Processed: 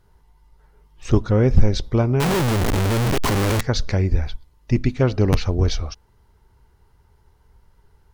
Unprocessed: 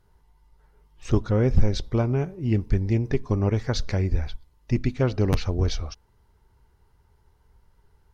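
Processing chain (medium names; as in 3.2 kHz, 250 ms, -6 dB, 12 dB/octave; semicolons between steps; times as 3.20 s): 2.20–3.61 s: one-bit comparator; trim +4.5 dB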